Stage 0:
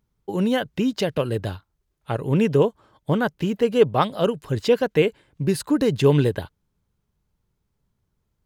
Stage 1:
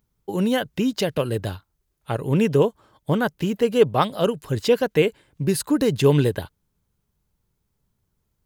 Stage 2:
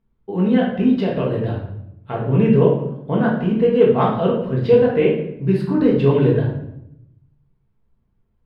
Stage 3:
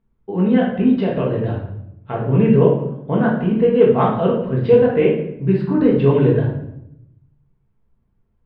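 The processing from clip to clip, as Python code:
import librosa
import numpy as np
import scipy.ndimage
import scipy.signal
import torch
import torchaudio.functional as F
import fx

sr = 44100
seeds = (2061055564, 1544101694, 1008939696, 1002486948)

y1 = fx.high_shelf(x, sr, hz=7400.0, db=8.5)
y2 = fx.air_absorb(y1, sr, metres=410.0)
y2 = fx.room_shoebox(y2, sr, seeds[0], volume_m3=200.0, walls='mixed', distance_m=1.6)
y2 = F.gain(torch.from_numpy(y2), -2.0).numpy()
y3 = scipy.signal.sosfilt(scipy.signal.butter(2, 3100.0, 'lowpass', fs=sr, output='sos'), y2)
y3 = F.gain(torch.from_numpy(y3), 1.0).numpy()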